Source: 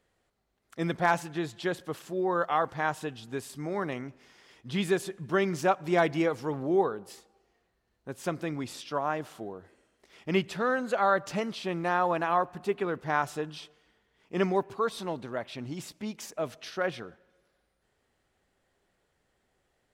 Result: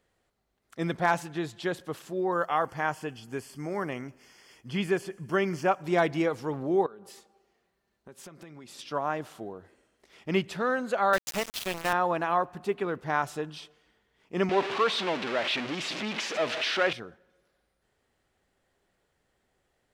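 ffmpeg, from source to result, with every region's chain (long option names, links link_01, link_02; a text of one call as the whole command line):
ffmpeg -i in.wav -filter_complex "[0:a]asettb=1/sr,asplit=3[link_01][link_02][link_03];[link_01]atrim=end=2.324[link_04];[link_02]atrim=start=2.32:end=5.83,asetpts=PTS-STARTPTS,afade=type=in:duration=0.004:curve=qsin,afade=type=out:start_time=3.506:duration=0.004:curve=qsin,acrossover=split=4200[link_05][link_06];[link_06]acompressor=threshold=-58dB:ratio=4:attack=1:release=60[link_07];[link_05][link_07]amix=inputs=2:normalize=0,asuperstop=centerf=3800:order=4:qfactor=4.4,aemphasis=mode=production:type=cd[link_08];[link_03]atrim=start=5.826[link_09];[link_04][link_08]acrossfade=duration=0.004:curve1=hsin:curve2=qsin[link_10];[link_10][link_09]acrossfade=duration=0.004:curve1=qsin:curve2=hsin,asettb=1/sr,asplit=3[link_11][link_12][link_13];[link_11]atrim=end=6.864[link_14];[link_12]atrim=start=6.86:end=8.79,asetpts=PTS-STARTPTS,afade=type=in:duration=0.004:curve=qsin,afade=type=out:start_time=1.926:duration=0.004:curve=qsin,highpass=frequency=110:poles=1,aecho=1:1:5.1:0.35,atrim=end_sample=85113,acompressor=threshold=-44dB:ratio=6:attack=3.2:release=140:knee=1:detection=peak[link_15];[link_13]atrim=start=8.786[link_16];[link_14][link_15]acrossfade=duration=0.004:curve1=hsin:curve2=qsin[link_17];[link_17][link_16]acrossfade=duration=0.004:curve1=qsin:curve2=hsin,asettb=1/sr,asplit=3[link_18][link_19][link_20];[link_18]atrim=end=11.134[link_21];[link_19]atrim=start=11.13:end=11.93,asetpts=PTS-STARTPTS,afade=type=in:duration=0.004:curve=qsin,afade=type=out:start_time=0.796:duration=0.004:curve=qsin,highpass=150,highshelf=frequency=2400:gain=11,aeval=exprs='val(0)*gte(abs(val(0)),0.0355)':channel_layout=same[link_22];[link_20]atrim=start=11.926[link_23];[link_21][link_22]acrossfade=duration=0.004:curve1=hsin:curve2=qsin[link_24];[link_24][link_23]acrossfade=duration=0.004:curve1=qsin:curve2=hsin,asettb=1/sr,asplit=3[link_25][link_26][link_27];[link_25]atrim=end=14.494[link_28];[link_26]atrim=start=14.49:end=16.93,asetpts=PTS-STARTPTS,afade=type=in:duration=0.004:curve=qsin,afade=type=out:start_time=2.436:duration=0.004:curve=qsin,aeval=exprs='val(0)+0.5*0.0355*sgn(val(0))':channel_layout=same,highpass=260,lowpass=4200,equalizer=frequency=2700:width_type=o:width=1.7:gain=8[link_29];[link_27]atrim=start=16.926[link_30];[link_28][link_29]acrossfade=duration=0.004:curve1=hsin:curve2=qsin[link_31];[link_31][link_30]acrossfade=duration=0.004:curve1=qsin:curve2=hsin" out.wav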